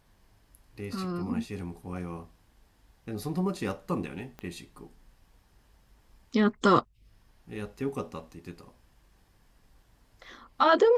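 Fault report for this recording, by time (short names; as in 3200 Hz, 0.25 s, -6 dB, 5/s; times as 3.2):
4.39 pop -27 dBFS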